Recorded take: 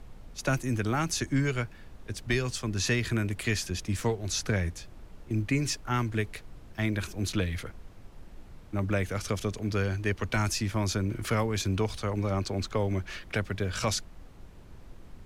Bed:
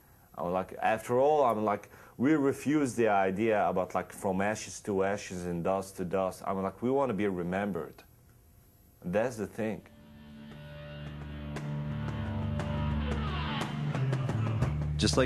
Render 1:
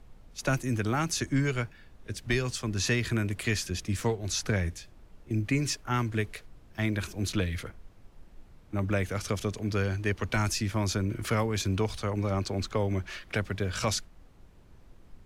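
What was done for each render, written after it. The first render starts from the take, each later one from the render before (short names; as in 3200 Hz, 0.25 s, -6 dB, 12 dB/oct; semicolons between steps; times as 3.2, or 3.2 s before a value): noise print and reduce 6 dB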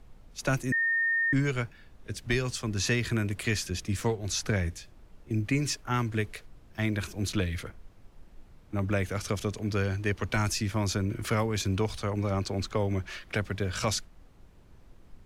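0.72–1.33 bleep 1830 Hz -23.5 dBFS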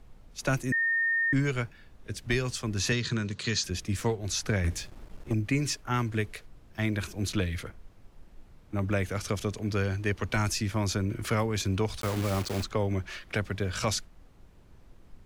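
2.92–3.64 speaker cabinet 120–7300 Hz, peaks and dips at 150 Hz +8 dB, 310 Hz -6 dB, 690 Hz -10 dB, 2200 Hz -6 dB, 4100 Hz +10 dB, 6400 Hz +6 dB; 4.64–5.34 sample leveller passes 2; 12.01–12.65 block floating point 3-bit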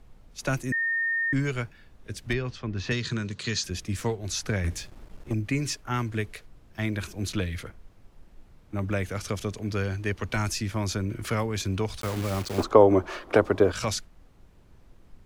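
2.33–2.91 air absorption 230 m; 12.58–13.72 band shelf 580 Hz +15 dB 2.6 oct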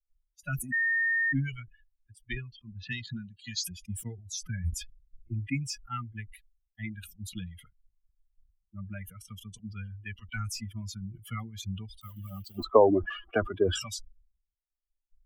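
per-bin expansion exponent 3; sustainer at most 91 dB/s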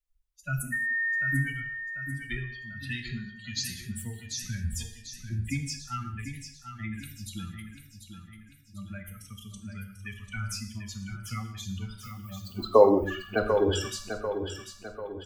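on a send: feedback echo 0.743 s, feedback 46%, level -8.5 dB; on the sum: non-linear reverb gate 0.26 s falling, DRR 5 dB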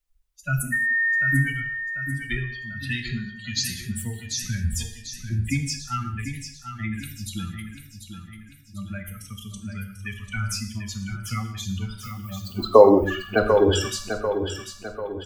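gain +6.5 dB; limiter -1 dBFS, peak gain reduction 2.5 dB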